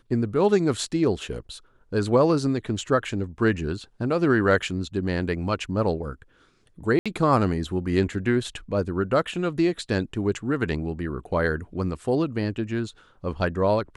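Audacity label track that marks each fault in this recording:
6.990000	7.060000	dropout 66 ms

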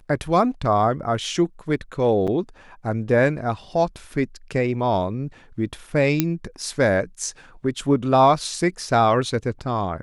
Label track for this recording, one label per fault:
2.270000	2.280000	dropout 6.8 ms
6.200000	6.200000	pop -4 dBFS

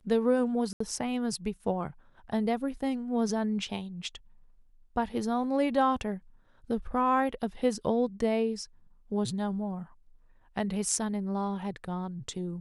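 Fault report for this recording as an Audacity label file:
0.730000	0.800000	dropout 74 ms

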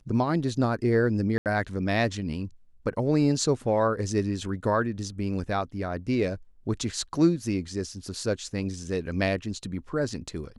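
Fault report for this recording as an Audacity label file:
1.380000	1.460000	dropout 78 ms

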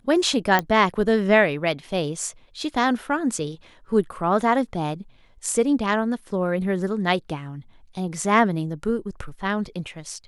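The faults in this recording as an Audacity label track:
0.590000	0.590000	pop -7 dBFS

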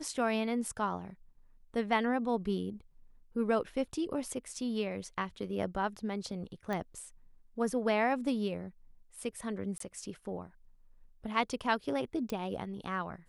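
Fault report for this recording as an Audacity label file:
6.730000	6.730000	pop -23 dBFS
9.780000	9.800000	dropout 23 ms
12.300000	12.300000	pop

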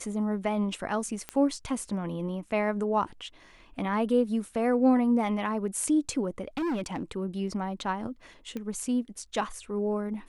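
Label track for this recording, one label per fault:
1.290000	1.290000	pop -18 dBFS
6.480000	7.030000	clipped -27 dBFS
8.570000	8.570000	pop -23 dBFS

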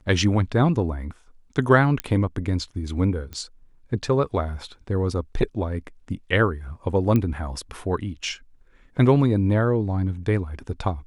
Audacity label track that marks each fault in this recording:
2.000000	2.000000	pop -9 dBFS
3.330000	3.330000	pop -21 dBFS
7.160000	7.160000	pop -11 dBFS

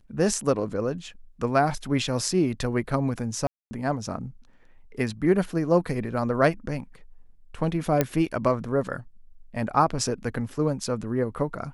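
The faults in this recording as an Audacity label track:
3.470000	3.710000	dropout 240 ms
8.010000	8.010000	pop -7 dBFS

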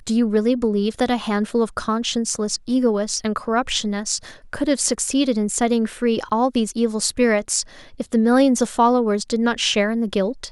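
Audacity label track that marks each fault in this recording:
6.290000	6.290000	dropout 4.9 ms

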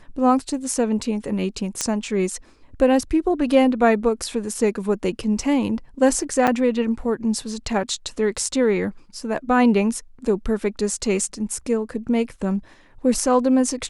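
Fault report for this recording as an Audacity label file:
1.810000	1.810000	pop -7 dBFS
6.470000	6.480000	dropout 5.8 ms

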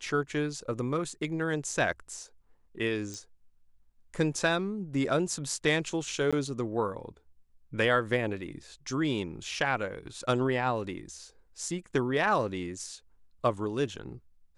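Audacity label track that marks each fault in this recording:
3.140000	3.140000	pop
6.310000	6.330000	dropout 16 ms

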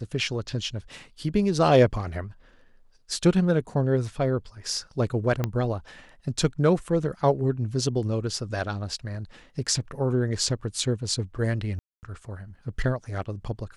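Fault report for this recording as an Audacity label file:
5.440000	5.440000	pop -12 dBFS
11.790000	12.030000	dropout 239 ms

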